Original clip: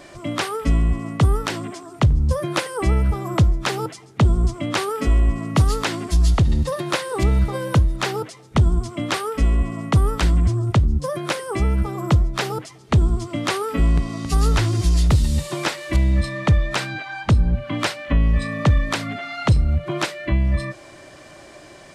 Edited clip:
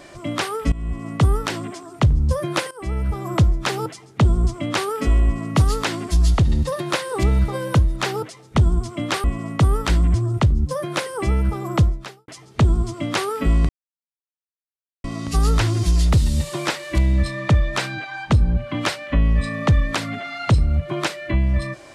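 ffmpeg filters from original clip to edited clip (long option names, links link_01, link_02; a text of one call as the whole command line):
ffmpeg -i in.wav -filter_complex "[0:a]asplit=6[link_01][link_02][link_03][link_04][link_05][link_06];[link_01]atrim=end=0.72,asetpts=PTS-STARTPTS,afade=type=out:start_time=0.716:duration=0.004:curve=hsin:silence=0.105925[link_07];[link_02]atrim=start=0.72:end=2.71,asetpts=PTS-STARTPTS,afade=type=in:duration=0.43:silence=0.105925,afade=type=out:start_time=1.986:duration=0.004:curve=hsin:silence=0.158489[link_08];[link_03]atrim=start=2.71:end=9.242,asetpts=PTS-STARTPTS,afade=type=in:duration=0.6:silence=0.158489[link_09];[link_04]atrim=start=9.568:end=12.61,asetpts=PTS-STARTPTS,afade=type=out:start_time=2.612:duration=0.43:curve=qua[link_10];[link_05]atrim=start=12.61:end=14.02,asetpts=PTS-STARTPTS,afade=type=in:duration=0.004:curve=hsin,afade=type=out:start_time=1.406:duration=0.004:curve=hsin,apad=pad_dur=1.35[link_11];[link_06]atrim=start=14.02,asetpts=PTS-STARTPTS,afade=type=in:duration=0.004:curve=hsin[link_12];[link_07][link_08][link_09]concat=n=3:v=0:a=1[link_13];[link_10][link_11][link_12]concat=n=3:v=0:a=1[link_14];[link_13][link_14]acrossfade=duration=0.004:curve1=hsin:curve2=hsin" out.wav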